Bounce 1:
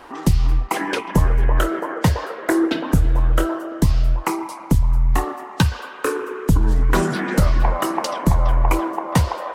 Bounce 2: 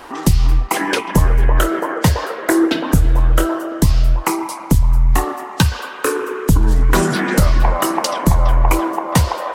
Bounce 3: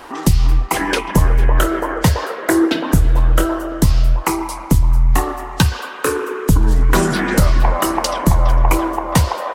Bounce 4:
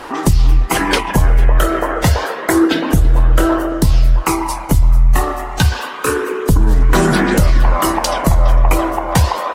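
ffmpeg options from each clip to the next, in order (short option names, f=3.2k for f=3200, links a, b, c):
-filter_complex "[0:a]highshelf=f=4.2k:g=6,asplit=2[a][b];[b]alimiter=limit=-12dB:level=0:latency=1:release=199,volume=-2.5dB[c];[a][c]amix=inputs=2:normalize=0"
-af "aecho=1:1:454:0.0841"
-af "aphaser=in_gain=1:out_gain=1:delay=1.6:decay=0.27:speed=0.29:type=sinusoidal,alimiter=level_in=5.5dB:limit=-1dB:release=50:level=0:latency=1,volume=-2.5dB" -ar 44100 -c:a aac -b:a 48k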